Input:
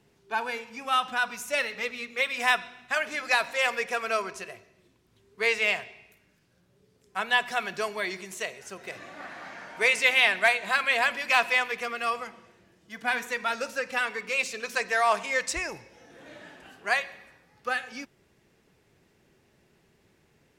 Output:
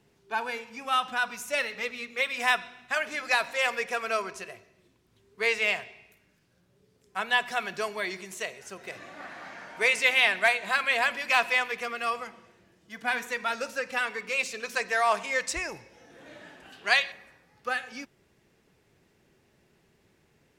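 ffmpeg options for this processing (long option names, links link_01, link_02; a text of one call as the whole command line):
ffmpeg -i in.wav -filter_complex "[0:a]asettb=1/sr,asplit=3[link_01][link_02][link_03];[link_01]atrim=end=16.724[link_04];[link_02]atrim=start=16.72:end=17.12,asetpts=PTS-STARTPTS,afade=type=in:duration=0.004:curve=qsin,afade=type=out:start_time=0.396:duration=0.004:curve=qsin,equalizer=frequency=3600:width_type=o:width=1.2:gain=12[link_05];[link_03]atrim=start=17.116[link_06];[link_04][link_05]acrossfade=duration=0.004:curve1=hsin:curve2=qsin[link_07];[link_07][link_06]acrossfade=duration=0.004:curve1=qsin:curve2=hsin,volume=-1dB" out.wav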